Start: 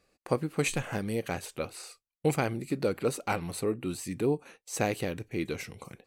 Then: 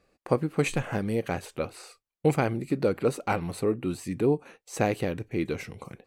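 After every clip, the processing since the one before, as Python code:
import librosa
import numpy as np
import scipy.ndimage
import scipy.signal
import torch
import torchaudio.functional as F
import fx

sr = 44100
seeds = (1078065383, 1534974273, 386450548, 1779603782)

y = fx.high_shelf(x, sr, hz=2900.0, db=-8.5)
y = y * librosa.db_to_amplitude(4.0)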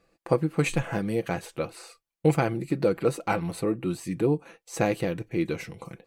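y = x + 0.45 * np.pad(x, (int(6.0 * sr / 1000.0), 0))[:len(x)]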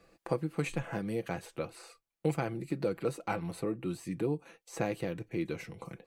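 y = fx.band_squash(x, sr, depth_pct=40)
y = y * librosa.db_to_amplitude(-8.0)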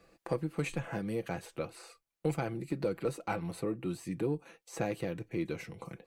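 y = fx.diode_clip(x, sr, knee_db=-16.5)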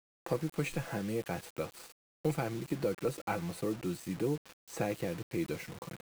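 y = fx.quant_dither(x, sr, seeds[0], bits=8, dither='none')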